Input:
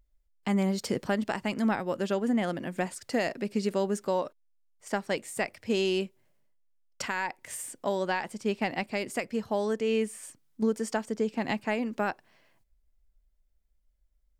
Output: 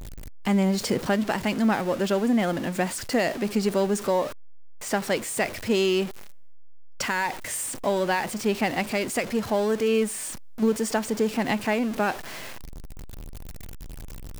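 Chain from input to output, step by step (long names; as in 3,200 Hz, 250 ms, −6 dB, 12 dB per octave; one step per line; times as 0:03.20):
converter with a step at zero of −34.5 dBFS
level +3.5 dB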